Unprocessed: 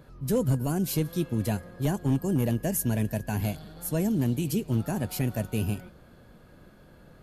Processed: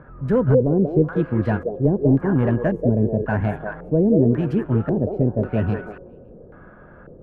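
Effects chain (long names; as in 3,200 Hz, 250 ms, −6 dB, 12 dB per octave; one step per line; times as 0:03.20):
adaptive Wiener filter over 9 samples
echo through a band-pass that steps 186 ms, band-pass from 520 Hz, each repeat 1.4 octaves, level −0.5 dB
auto-filter low-pass square 0.92 Hz 460–1,500 Hz
level +6.5 dB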